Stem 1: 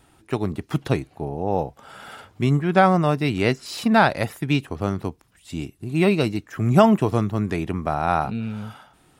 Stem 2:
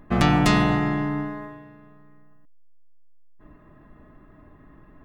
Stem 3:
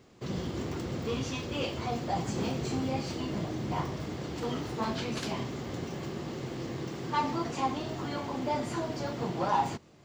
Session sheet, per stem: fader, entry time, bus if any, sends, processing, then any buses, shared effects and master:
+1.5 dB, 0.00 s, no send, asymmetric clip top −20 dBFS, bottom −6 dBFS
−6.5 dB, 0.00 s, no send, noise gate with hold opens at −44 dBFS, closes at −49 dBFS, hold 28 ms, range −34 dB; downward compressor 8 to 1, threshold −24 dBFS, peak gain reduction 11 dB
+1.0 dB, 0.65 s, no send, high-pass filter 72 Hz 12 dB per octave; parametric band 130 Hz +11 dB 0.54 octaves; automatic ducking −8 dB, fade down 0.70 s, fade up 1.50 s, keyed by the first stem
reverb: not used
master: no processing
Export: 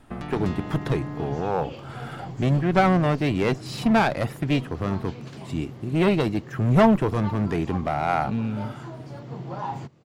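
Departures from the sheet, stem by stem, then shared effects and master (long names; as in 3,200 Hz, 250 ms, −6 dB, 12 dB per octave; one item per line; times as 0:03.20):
stem 3: entry 0.65 s → 0.10 s
master: extra high-shelf EQ 3,400 Hz −8 dB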